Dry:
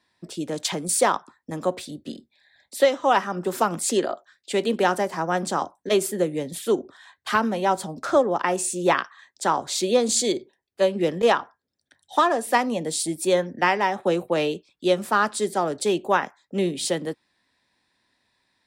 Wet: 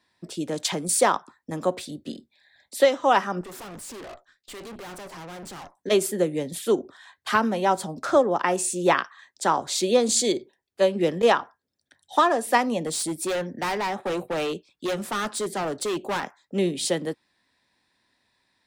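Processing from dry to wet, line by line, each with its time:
0:03.41–0:05.77: tube saturation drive 38 dB, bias 0.75
0:12.86–0:16.24: hard clipping −24 dBFS

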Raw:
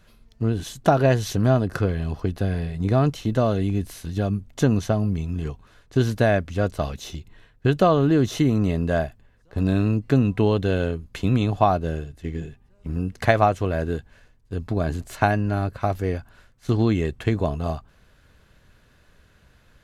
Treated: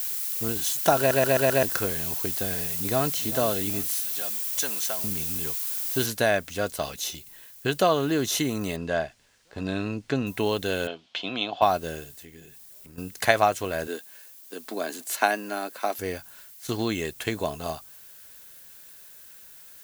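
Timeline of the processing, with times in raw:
0:00.98: stutter in place 0.13 s, 5 plays
0:02.56–0:03.32: delay throw 390 ms, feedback 40%, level −14.5 dB
0:03.91–0:05.04: high-pass filter 1,500 Hz 6 dB per octave
0:06.06: noise floor change −45 dB −63 dB
0:08.76–0:10.27: high-frequency loss of the air 110 metres
0:10.87–0:11.62: loudspeaker in its box 280–4,300 Hz, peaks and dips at 420 Hz −5 dB, 700 Hz +8 dB, 1,900 Hz −5 dB, 3,200 Hz +8 dB
0:12.16–0:12.98: downward compressor 2 to 1, threshold −43 dBFS
0:13.87–0:15.99: Butterworth high-pass 220 Hz
whole clip: RIAA equalisation recording; notch filter 1,200 Hz, Q 17; level −1 dB

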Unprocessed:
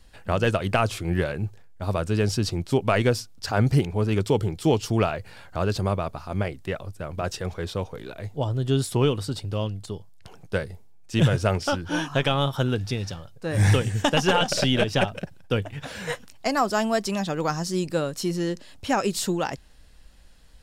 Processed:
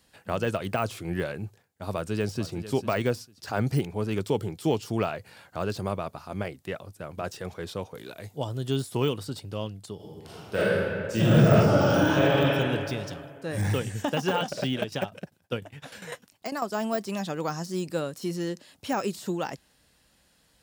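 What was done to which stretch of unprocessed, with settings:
0:01.90–0:02.55: delay throw 450 ms, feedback 20%, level −14 dB
0:07.95–0:09.14: high-shelf EQ 3,700 Hz +7 dB
0:09.95–0:12.29: thrown reverb, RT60 2.3 s, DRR −10 dB
0:14.72–0:16.75: shaped tremolo saw down 10 Hz, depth 75%
whole clip: de-essing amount 80%; high-pass filter 120 Hz 12 dB per octave; high-shelf EQ 11,000 Hz +8.5 dB; level −4 dB

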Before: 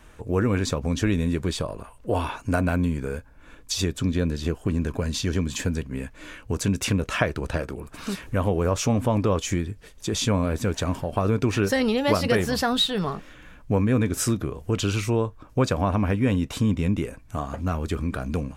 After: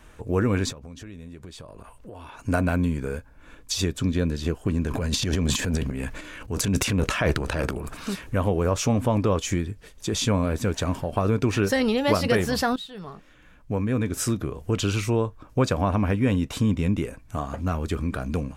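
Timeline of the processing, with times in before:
0:00.72–0:02.39: downward compressor, threshold −39 dBFS
0:04.87–0:08.03: transient designer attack −5 dB, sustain +12 dB
0:12.76–0:14.62: fade in, from −18 dB

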